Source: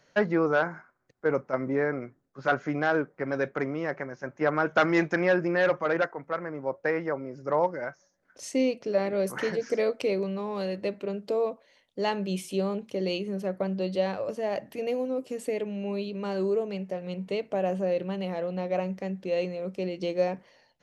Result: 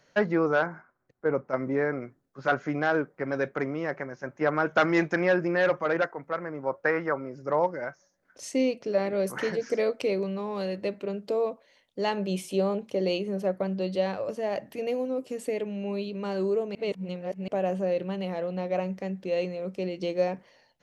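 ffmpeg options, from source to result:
ffmpeg -i in.wav -filter_complex "[0:a]asettb=1/sr,asplit=3[link_01][link_02][link_03];[link_01]atrim=end=0.664[link_04];[link_02]atrim=start=0.66:end=1.5,asetpts=PTS-STARTPTS,afade=type=in:duration=0.004:curve=qsin,afade=type=out:start_time=0.836:duration=0.004:curve=qsin,highshelf=frequency=2800:gain=-11.5[link_05];[link_03]atrim=start=1.496[link_06];[link_04][link_05]acrossfade=duration=0.004:curve1=hsin:curve2=qsin[link_07];[link_07][link_06]acrossfade=duration=0.004:curve1=qsin:curve2=hsin,asettb=1/sr,asplit=3[link_08][link_09][link_10];[link_08]atrim=end=6.634[link_11];[link_09]atrim=start=6.63:end=7.29,asetpts=PTS-STARTPTS,afade=type=in:duration=0.004:curve=qsin,afade=type=out:start_time=0.656:duration=0.004:curve=qsin,equalizer=frequency=1300:width=1.6:gain=8.5[link_12];[link_10]atrim=start=7.286[link_13];[link_11][link_12]acrossfade=duration=0.004:curve1=hsin:curve2=qsin[link_14];[link_14][link_13]acrossfade=duration=0.004:curve1=qsin:curve2=hsin,asettb=1/sr,asplit=3[link_15][link_16][link_17];[link_15]atrim=end=12.174[link_18];[link_16]atrim=start=12.17:end=13.52,asetpts=PTS-STARTPTS,afade=type=in:duration=0.004:curve=qsin,afade=type=out:start_time=1.346:duration=0.004:curve=qsin,equalizer=frequency=660:width_type=o:width=1.3:gain=5[link_19];[link_17]atrim=start=13.516[link_20];[link_18][link_19]acrossfade=duration=0.004:curve1=hsin:curve2=qsin[link_21];[link_21][link_20]acrossfade=duration=0.004:curve1=qsin:curve2=hsin,asplit=3[link_22][link_23][link_24];[link_22]atrim=end=16.752[link_25];[link_23]atrim=start=16.748:end=17.482,asetpts=PTS-STARTPTS,areverse[link_26];[link_24]atrim=start=17.478[link_27];[link_25][link_26]acrossfade=duration=0.004:curve1=hsin:curve2=hsin[link_28];[link_28][link_27]acrossfade=duration=0.004:curve1=hsin:curve2=hsin" out.wav

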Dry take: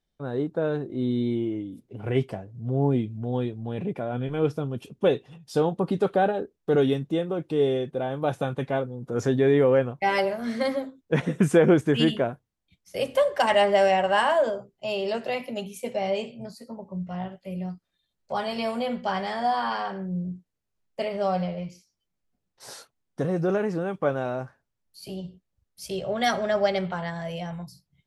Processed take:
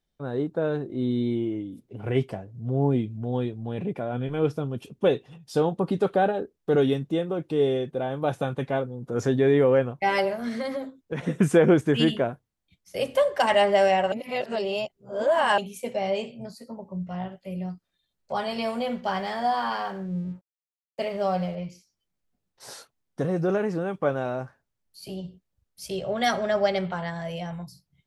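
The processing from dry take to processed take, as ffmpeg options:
ffmpeg -i in.wav -filter_complex "[0:a]asettb=1/sr,asplit=3[link_01][link_02][link_03];[link_01]atrim=end=10.484[link_04];[link_02]atrim=start=10.48:end=11.25,asetpts=PTS-STARTPTS,afade=type=in:duration=0.004:curve=qsin,afade=type=out:start_time=0.766:duration=0.004:curve=qsin,acompressor=threshold=-26dB:ratio=5:attack=3.2:release=140:knee=1:detection=peak[link_05];[link_03]atrim=start=11.246[link_06];[link_04][link_05]acrossfade=duration=0.004:curve1=hsin:curve2=qsin[link_07];[link_07][link_06]acrossfade=duration=0.004:curve1=qsin:curve2=hsin,asettb=1/sr,asplit=3[link_08][link_09][link_10];[link_08]atrim=end=18.624[link_11];[link_09]atrim=start=18.62:end=21.55,asetpts=PTS-STARTPTS,afade=type=in:duration=0.004:curve=qsin,afade=type=out:start_time=2.926:duration=0.004:curve=qsin,aeval=exprs='sgn(val(0))*max(abs(val(0))-0.00178,0)':channel_layout=same[link_12];[link_10]atrim=start=21.546[link_13];[link_11][link_12]acrossfade=duration=0.004:curve1=hsin:curve2=qsin[link_14];[link_14][link_13]acrossfade=duration=0.004:curve1=qsin:curve2=hsin,asplit=3[link_15][link_16][link_17];[link_15]atrim=end=14.122[link_18];[link_16]atrim=start=14.118:end=15.582,asetpts=PTS-STARTPTS,areverse[link_19];[link_17]atrim=start=15.578[link_20];[link_18][link_19]acrossfade=duration=0.004:curve1=hsin:curve2=hsin[link_21];[link_21][link_20]acrossfade=duration=0.004:curve1=hsin:curve2=hsin" out.wav

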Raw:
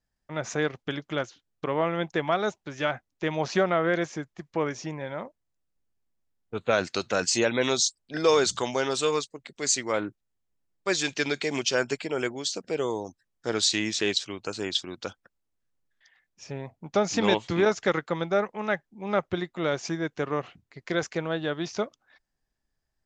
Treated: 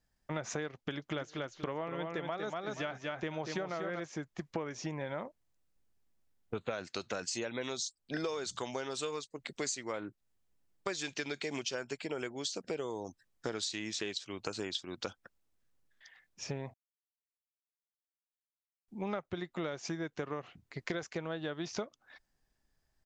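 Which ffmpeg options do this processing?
ffmpeg -i in.wav -filter_complex "[0:a]asplit=3[link_01][link_02][link_03];[link_01]afade=type=out:start_time=1.17:duration=0.02[link_04];[link_02]aecho=1:1:238|476|714:0.596|0.113|0.0215,afade=type=in:start_time=1.17:duration=0.02,afade=type=out:start_time=3.99:duration=0.02[link_05];[link_03]afade=type=in:start_time=3.99:duration=0.02[link_06];[link_04][link_05][link_06]amix=inputs=3:normalize=0,asplit=3[link_07][link_08][link_09];[link_07]atrim=end=16.74,asetpts=PTS-STARTPTS,afade=type=out:start_time=16.736:duration=0.004:curve=hsin[link_10];[link_08]atrim=start=16.74:end=18.88,asetpts=PTS-STARTPTS,volume=0[link_11];[link_09]atrim=start=18.88,asetpts=PTS-STARTPTS,afade=type=in:duration=0.004:curve=hsin[link_12];[link_10][link_11][link_12]concat=n=3:v=0:a=1,acompressor=threshold=-37dB:ratio=12,volume=3dB" out.wav

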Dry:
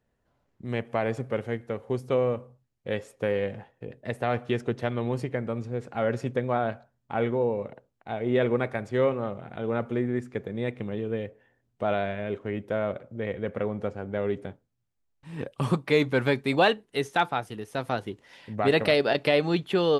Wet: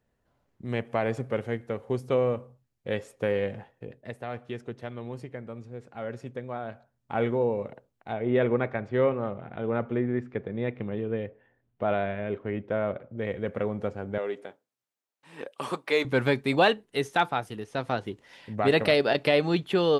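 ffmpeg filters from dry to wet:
ffmpeg -i in.wav -filter_complex "[0:a]asettb=1/sr,asplit=3[link_01][link_02][link_03];[link_01]atrim=end=8.134[link_04];[link_02]atrim=start=8.13:end=13.18,asetpts=PTS-STARTPTS,afade=type=in:duration=0.004:curve=qsin,afade=type=out:start_time=5.046:duration=0.004:curve=qsin,lowpass=2900[link_05];[link_03]atrim=start=13.176[link_06];[link_04][link_05]acrossfade=duration=0.004:curve1=hsin:curve2=qsin[link_07];[link_07][link_06]acrossfade=duration=0.004:curve1=qsin:curve2=hsin,asettb=1/sr,asplit=3[link_08][link_09][link_10];[link_08]atrim=end=14.184[link_11];[link_09]atrim=start=14.18:end=16.05,asetpts=PTS-STARTPTS,afade=type=in:duration=0.004:curve=qsin,afade=type=out:start_time=1.866:duration=0.004:curve=qsin,highpass=430[link_12];[link_10]atrim=start=16.046[link_13];[link_11][link_12]acrossfade=duration=0.004:curve1=hsin:curve2=qsin[link_14];[link_14][link_13]acrossfade=duration=0.004:curve1=qsin:curve2=hsin,asettb=1/sr,asplit=3[link_15][link_16][link_17];[link_15]atrim=end=17.644[link_18];[link_16]atrim=start=17.64:end=18.05,asetpts=PTS-STARTPTS,afade=type=in:duration=0.004:curve=qsin,afade=type=out:start_time=0.406:duration=0.004:curve=qsin,lowpass=7100[link_19];[link_17]atrim=start=18.046[link_20];[link_18][link_19]acrossfade=duration=0.004:curve1=hsin:curve2=qsin[link_21];[link_21][link_20]acrossfade=duration=0.004:curve1=qsin:curve2=hsin,asplit=3[link_22][link_23][link_24];[link_22]atrim=end=4.18,asetpts=PTS-STARTPTS,afade=type=out:start_time=3.72:duration=0.46:silence=0.354813[link_25];[link_23]atrim=start=4.18:end=6.66,asetpts=PTS-STARTPTS,volume=-9dB[link_26];[link_24]atrim=start=6.66,asetpts=PTS-STARTPTS,afade=type=in:duration=0.46:silence=0.354813[link_27];[link_25][link_26][link_27]concat=n=3:v=0:a=1" out.wav

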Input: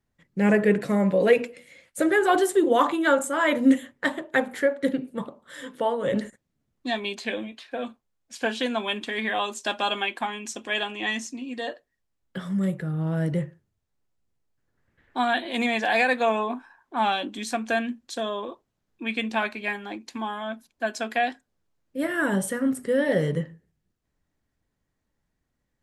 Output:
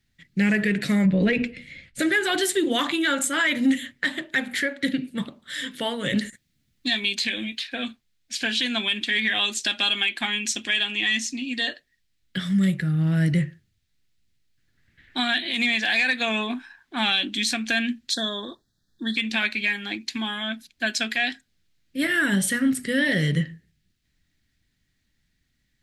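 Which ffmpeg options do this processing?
ffmpeg -i in.wav -filter_complex "[0:a]asplit=3[link_01][link_02][link_03];[link_01]afade=type=out:start_time=1.05:duration=0.02[link_04];[link_02]aemphasis=mode=reproduction:type=riaa,afade=type=in:start_time=1.05:duration=0.02,afade=type=out:start_time=1.98:duration=0.02[link_05];[link_03]afade=type=in:start_time=1.98:duration=0.02[link_06];[link_04][link_05][link_06]amix=inputs=3:normalize=0,asettb=1/sr,asplit=3[link_07][link_08][link_09];[link_07]atrim=end=5.714[link_10];[link_08]atrim=start=5.71:end=7.68,asetpts=PTS-STARTPTS,afade=type=in:duration=0.004:curve=qsin,afade=type=out:start_time=1.966:duration=0.004:curve=qsin,highshelf=frequency=7700:gain=6.5[link_11];[link_09]atrim=start=7.676[link_12];[link_10][link_11]acrossfade=duration=0.004:curve1=hsin:curve2=qsin[link_13];[link_13][link_12]acrossfade=duration=0.004:curve1=qsin:curve2=hsin,asettb=1/sr,asplit=3[link_14][link_15][link_16];[link_14]atrim=end=12.804[link_17];[link_15]atrim=start=12.8:end=13.46,asetpts=PTS-STARTPTS,afade=type=in:duration=0.004:curve=qsin,afade=type=out:start_time=0.656:duration=0.004:curve=qsin,equalizer=frequency=3400:width_type=o:width=0.33:gain=-6[link_18];[link_16]atrim=start=13.456[link_19];[link_17][link_18]acrossfade=duration=0.004:curve1=hsin:curve2=qsin[link_20];[link_20][link_19]acrossfade=duration=0.004:curve1=qsin:curve2=hsin,asettb=1/sr,asplit=3[link_21][link_22][link_23];[link_21]atrim=end=18.134[link_24];[link_22]atrim=start=18.13:end=19.16,asetpts=PTS-STARTPTS,afade=type=in:duration=0.004:curve=qsin,afade=type=out:start_time=1.026:duration=0.004:curve=qsin,asuperstop=centerf=2500:order=12:qfactor=1.6[link_25];[link_23]atrim=start=19.156[link_26];[link_24][link_25]acrossfade=duration=0.004:curve1=hsin:curve2=qsin[link_27];[link_27][link_26]acrossfade=duration=0.004:curve1=qsin:curve2=hsin,equalizer=frequency=500:width_type=o:width=1:gain=-11,equalizer=frequency=1000:width_type=o:width=1:gain=-12,equalizer=frequency=2000:width_type=o:width=1:gain=6,equalizer=frequency=4000:width_type=o:width=1:gain=8,acontrast=67,alimiter=limit=-13dB:level=0:latency=1:release=161" out.wav

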